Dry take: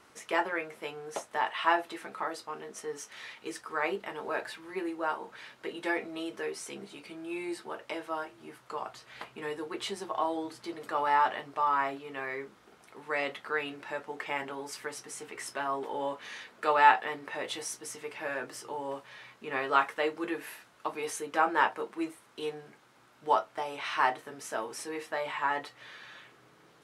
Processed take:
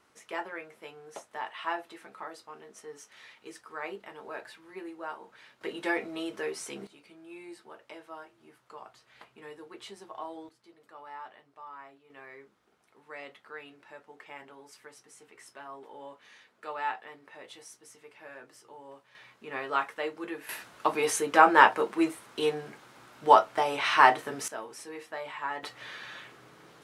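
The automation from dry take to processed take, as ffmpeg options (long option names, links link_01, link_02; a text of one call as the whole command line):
ffmpeg -i in.wav -af "asetnsamples=nb_out_samples=441:pad=0,asendcmd='5.61 volume volume 1.5dB;6.87 volume volume -9.5dB;10.49 volume volume -18.5dB;12.1 volume volume -12dB;19.15 volume volume -3.5dB;20.49 volume volume 8dB;24.48 volume volume -4.5dB;25.63 volume volume 5.5dB',volume=-7dB" out.wav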